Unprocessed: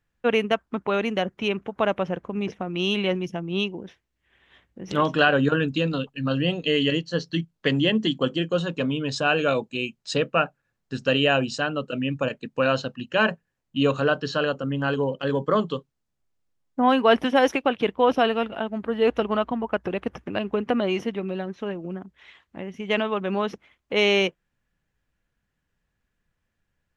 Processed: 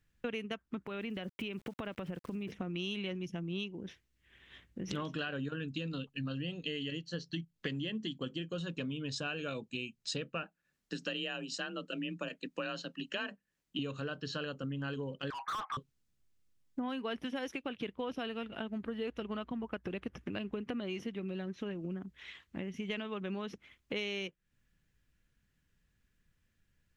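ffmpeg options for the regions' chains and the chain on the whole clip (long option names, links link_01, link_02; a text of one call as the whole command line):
ffmpeg -i in.wav -filter_complex "[0:a]asettb=1/sr,asplit=3[link_01][link_02][link_03];[link_01]atrim=end=0.864[link_04];[link_02]atrim=start=0.86:end=2.52,asetpts=PTS-STARTPTS,afade=type=in:duration=0.004:curve=qsin,afade=type=out:start_time=1.656:duration=0.004:curve=qsin,lowpass=frequency=4000:width=0.5412,lowpass=frequency=4000:width=1.3066,aeval=exprs='val(0)*gte(abs(val(0)),0.00355)':channel_layout=same,acompressor=threshold=-33dB:ratio=3:attack=3.2:release=140:knee=1:detection=peak[link_05];[link_03]atrim=start=2.516[link_06];[link_04][link_05]acrossfade=duration=0.004:curve1=hsin:curve2=qsin[link_07];[link_07][link_06]acrossfade=duration=0.004:curve1=qsin:curve2=hsin,asettb=1/sr,asplit=3[link_08][link_09][link_10];[link_08]atrim=end=10.434[link_11];[link_09]atrim=start=10.43:end=13.79,asetpts=PTS-STARTPTS,afade=type=in:duration=0.004:curve=qsin,afade=type=out:start_time=3.356:duration=0.004:curve=qsin,lowshelf=frequency=150:gain=-11.5,afreqshift=32[link_12];[link_10]atrim=start=13.786[link_13];[link_11][link_12]acrossfade=duration=0.004:curve1=hsin:curve2=qsin[link_14];[link_14][link_13]acrossfade=duration=0.004:curve1=qsin:curve2=hsin,asettb=1/sr,asplit=3[link_15][link_16][link_17];[link_15]atrim=end=15.304[link_18];[link_16]atrim=start=15.3:end=15.77,asetpts=PTS-STARTPTS,afade=type=in:duration=0.004:curve=qsin,afade=type=out:start_time=0.466:duration=0.004:curve=qsin,asuperpass=centerf=1300:order=20:qfactor=0.8,asplit=2[link_19][link_20];[link_20]highpass=frequency=720:poles=1,volume=32dB,asoftclip=type=tanh:threshold=-16dB[link_21];[link_19][link_21]amix=inputs=2:normalize=0,lowpass=frequency=1100:poles=1,volume=-6dB[link_22];[link_17]atrim=start=15.766[link_23];[link_18][link_22]acrossfade=duration=0.004:curve1=hsin:curve2=qsin[link_24];[link_24][link_23]acrossfade=duration=0.004:curve1=qsin:curve2=hsin,equalizer=frequency=770:width_type=o:width=1.7:gain=-10,acompressor=threshold=-39dB:ratio=6,volume=2.5dB" out.wav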